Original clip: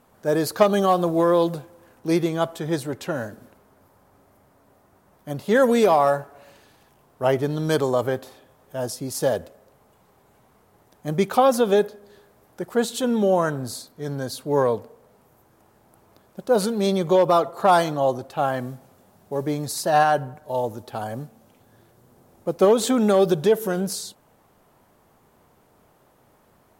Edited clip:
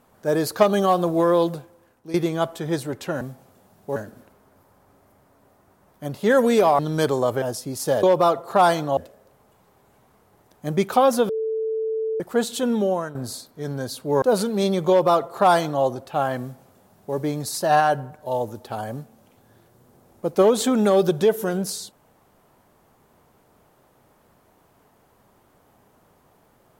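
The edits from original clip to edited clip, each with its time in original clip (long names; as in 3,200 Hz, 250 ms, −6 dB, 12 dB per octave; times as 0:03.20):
0:01.43–0:02.14: fade out linear, to −15 dB
0:06.04–0:07.50: remove
0:08.13–0:08.77: remove
0:11.70–0:12.61: beep over 442 Hz −22 dBFS
0:13.14–0:13.56: fade out, to −12.5 dB
0:14.63–0:16.45: remove
0:17.12–0:18.06: duplicate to 0:09.38
0:18.64–0:19.39: duplicate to 0:03.21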